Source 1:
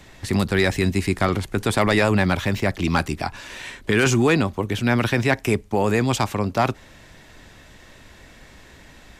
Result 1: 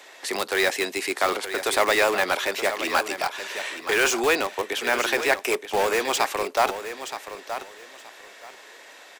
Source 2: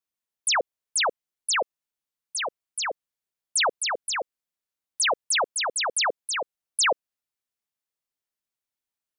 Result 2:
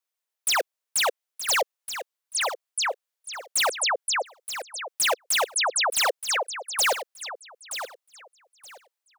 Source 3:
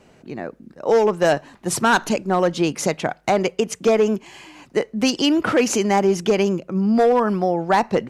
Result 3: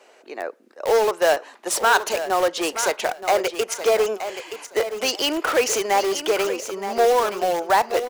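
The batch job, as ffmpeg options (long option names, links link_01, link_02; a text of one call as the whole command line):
ffmpeg -i in.wav -filter_complex "[0:a]highpass=frequency=430:width=0.5412,highpass=frequency=430:width=1.3066,asplit=2[link_01][link_02];[link_02]aeval=exprs='(mod(10.6*val(0)+1,2)-1)/10.6':channel_layout=same,volume=-8dB[link_03];[link_01][link_03]amix=inputs=2:normalize=0,aecho=1:1:924|1848|2772:0.299|0.0597|0.0119" out.wav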